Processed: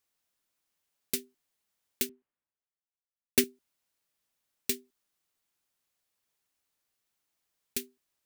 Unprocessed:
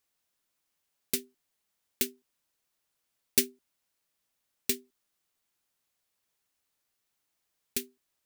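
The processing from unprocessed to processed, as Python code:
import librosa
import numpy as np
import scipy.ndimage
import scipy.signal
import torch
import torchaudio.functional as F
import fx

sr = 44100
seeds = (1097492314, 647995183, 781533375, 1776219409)

y = fx.band_widen(x, sr, depth_pct=70, at=(2.09, 3.44))
y = F.gain(torch.from_numpy(y), -1.5).numpy()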